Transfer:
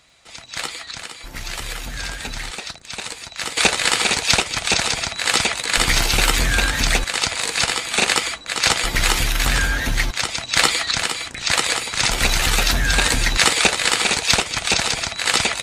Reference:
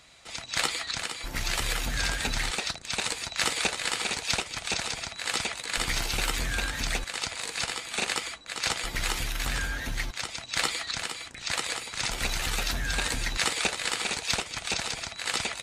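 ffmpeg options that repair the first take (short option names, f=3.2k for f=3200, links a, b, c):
-af "adeclick=t=4,asetnsamples=n=441:p=0,asendcmd='3.57 volume volume -11.5dB',volume=0dB"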